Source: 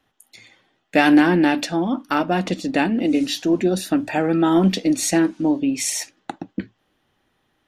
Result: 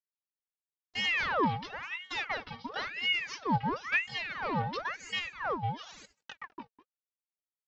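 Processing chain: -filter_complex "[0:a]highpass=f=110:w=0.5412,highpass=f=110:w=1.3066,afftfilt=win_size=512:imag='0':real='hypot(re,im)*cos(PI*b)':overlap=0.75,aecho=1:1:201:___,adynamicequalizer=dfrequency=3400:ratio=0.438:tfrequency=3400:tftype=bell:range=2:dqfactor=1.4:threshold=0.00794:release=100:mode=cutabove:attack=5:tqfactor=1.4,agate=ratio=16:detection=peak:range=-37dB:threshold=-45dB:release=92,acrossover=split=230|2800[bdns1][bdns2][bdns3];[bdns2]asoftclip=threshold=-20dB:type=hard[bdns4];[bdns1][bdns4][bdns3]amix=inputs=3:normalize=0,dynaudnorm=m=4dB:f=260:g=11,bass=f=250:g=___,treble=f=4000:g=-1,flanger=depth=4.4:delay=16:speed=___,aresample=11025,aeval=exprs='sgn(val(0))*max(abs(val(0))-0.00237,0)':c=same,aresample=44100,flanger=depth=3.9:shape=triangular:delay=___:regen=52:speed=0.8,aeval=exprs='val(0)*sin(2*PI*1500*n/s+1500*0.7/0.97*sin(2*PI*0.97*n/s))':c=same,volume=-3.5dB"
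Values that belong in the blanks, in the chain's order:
0.2, -5, 0.39, 1.7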